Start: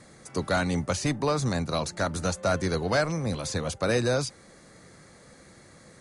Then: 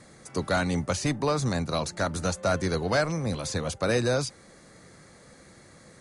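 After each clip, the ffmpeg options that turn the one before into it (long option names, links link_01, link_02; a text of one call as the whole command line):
ffmpeg -i in.wav -af anull out.wav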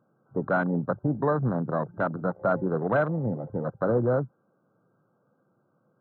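ffmpeg -i in.wav -af "afftfilt=real='re*between(b*sr/4096,100,1600)':imag='im*between(b*sr/4096,100,1600)':win_size=4096:overlap=0.75,afwtdn=0.0251,volume=1.5dB" out.wav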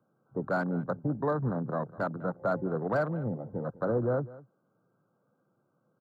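ffmpeg -i in.wav -filter_complex "[0:a]aecho=1:1:201:0.112,acrossover=split=200|700|1500[link_01][link_02][link_03][link_04];[link_04]asoftclip=type=hard:threshold=-35.5dB[link_05];[link_01][link_02][link_03][link_05]amix=inputs=4:normalize=0,volume=-4.5dB" out.wav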